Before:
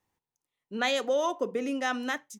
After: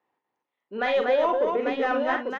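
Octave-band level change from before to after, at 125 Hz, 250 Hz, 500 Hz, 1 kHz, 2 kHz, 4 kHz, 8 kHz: n/a, +1.5 dB, +7.0 dB, +6.5 dB, +3.0 dB, -3.5 dB, under -15 dB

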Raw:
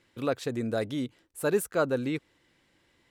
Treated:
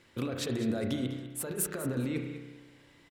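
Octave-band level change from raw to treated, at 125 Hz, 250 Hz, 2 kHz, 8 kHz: +1.5, -0.5, -6.0, +5.0 dB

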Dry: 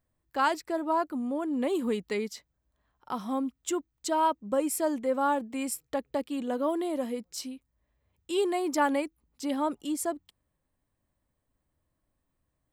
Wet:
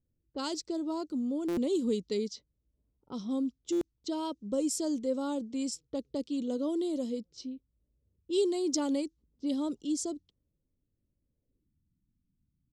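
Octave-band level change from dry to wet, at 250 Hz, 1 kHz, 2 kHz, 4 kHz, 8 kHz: 0.0, -14.5, -15.5, -0.5, -2.0 dB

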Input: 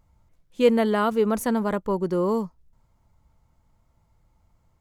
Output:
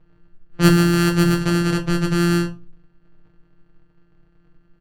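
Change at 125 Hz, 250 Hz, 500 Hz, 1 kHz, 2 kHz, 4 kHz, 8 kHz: +17.0, +7.0, -2.5, +0.5, +10.0, +11.5, +11.0 dB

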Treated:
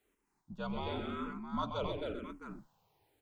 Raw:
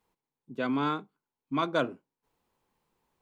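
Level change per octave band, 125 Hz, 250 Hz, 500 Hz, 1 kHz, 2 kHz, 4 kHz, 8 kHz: -2.5 dB, -7.5 dB, -5.5 dB, -7.0 dB, -11.0 dB, -5.0 dB, n/a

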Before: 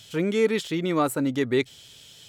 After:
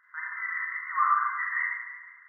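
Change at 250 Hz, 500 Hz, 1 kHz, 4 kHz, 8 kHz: under -40 dB, under -40 dB, +6.0 dB, under -40 dB, under -40 dB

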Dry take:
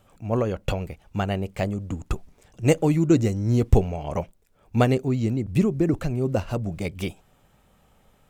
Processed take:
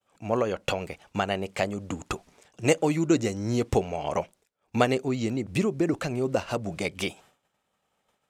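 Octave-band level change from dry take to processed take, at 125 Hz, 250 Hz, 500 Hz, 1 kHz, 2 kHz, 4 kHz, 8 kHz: -9.0, -4.0, -1.0, +1.5, +3.0, +3.5, +3.0 dB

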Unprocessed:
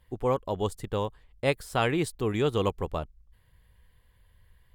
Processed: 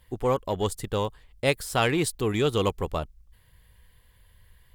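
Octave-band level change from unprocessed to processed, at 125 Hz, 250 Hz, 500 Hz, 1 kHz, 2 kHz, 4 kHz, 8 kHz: +2.0, +2.0, +2.0, +2.0, +3.5, +5.5, +8.5 dB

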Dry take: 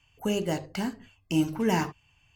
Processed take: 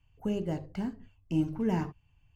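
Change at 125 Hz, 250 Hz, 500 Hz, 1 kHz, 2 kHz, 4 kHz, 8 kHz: -1.0 dB, -3.0 dB, -5.5 dB, -8.5 dB, -12.0 dB, -14.0 dB, under -15 dB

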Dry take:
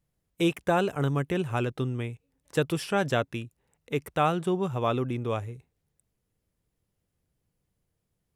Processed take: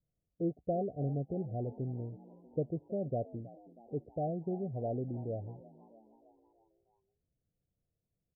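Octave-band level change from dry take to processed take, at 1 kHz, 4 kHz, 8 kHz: -13.5 dB, under -40 dB, under -35 dB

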